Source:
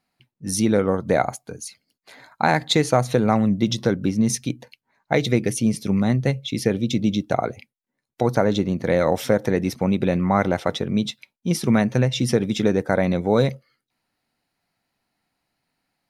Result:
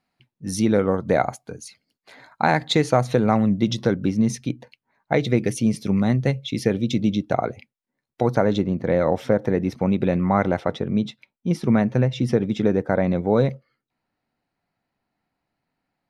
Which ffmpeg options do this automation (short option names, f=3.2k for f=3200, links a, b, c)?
-af "asetnsamples=n=441:p=0,asendcmd='4.25 lowpass f 2500;5.38 lowpass f 5300;7.07 lowpass f 3200;8.62 lowpass f 1400;9.72 lowpass f 2500;10.61 lowpass f 1500',lowpass=f=4.4k:p=1"